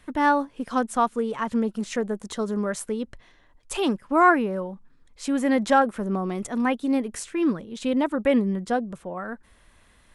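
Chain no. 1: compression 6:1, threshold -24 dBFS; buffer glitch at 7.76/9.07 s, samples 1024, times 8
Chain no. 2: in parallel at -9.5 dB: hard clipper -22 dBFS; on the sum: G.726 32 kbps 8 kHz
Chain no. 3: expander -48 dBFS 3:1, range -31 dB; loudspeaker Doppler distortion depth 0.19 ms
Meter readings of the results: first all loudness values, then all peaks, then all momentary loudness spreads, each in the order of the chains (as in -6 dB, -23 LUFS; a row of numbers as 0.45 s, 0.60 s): -30.0 LUFS, -23.0 LUFS, -25.0 LUFS; -14.5 dBFS, -5.5 dBFS, -6.0 dBFS; 6 LU, 13 LU, 14 LU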